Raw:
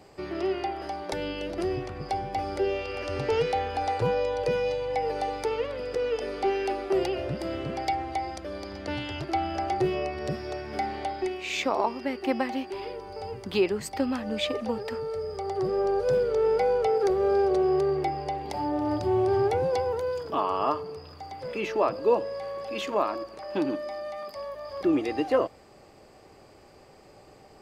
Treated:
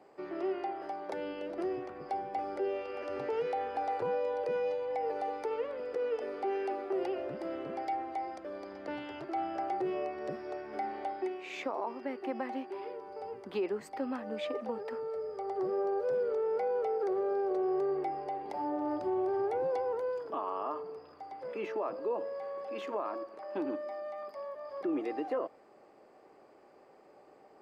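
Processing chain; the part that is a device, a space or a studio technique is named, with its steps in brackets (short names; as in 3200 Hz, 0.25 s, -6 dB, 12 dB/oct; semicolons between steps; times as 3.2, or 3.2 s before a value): DJ mixer with the lows and highs turned down (three-band isolator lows -22 dB, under 220 Hz, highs -13 dB, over 2000 Hz; limiter -21 dBFS, peak gain reduction 8.5 dB); gain -4.5 dB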